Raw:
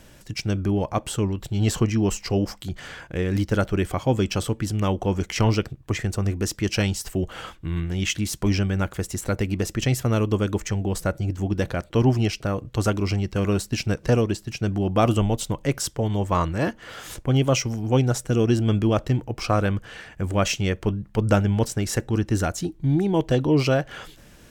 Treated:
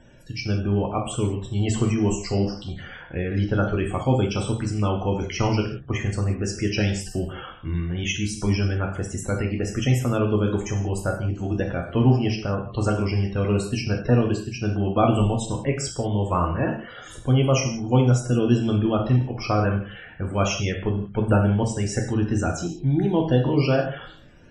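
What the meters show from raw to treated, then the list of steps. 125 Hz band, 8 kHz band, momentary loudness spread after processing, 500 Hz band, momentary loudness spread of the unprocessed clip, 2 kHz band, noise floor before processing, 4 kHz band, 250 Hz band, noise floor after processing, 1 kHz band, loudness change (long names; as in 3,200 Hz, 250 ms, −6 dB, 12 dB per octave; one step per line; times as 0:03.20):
+1.0 dB, −2.5 dB, 8 LU, 0.0 dB, 7 LU, −0.5 dB, −50 dBFS, −2.0 dB, +0.5 dB, −42 dBFS, +0.5 dB, +0.5 dB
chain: spectral peaks only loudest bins 64
reverb whose tail is shaped and stops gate 210 ms falling, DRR 1 dB
level −2 dB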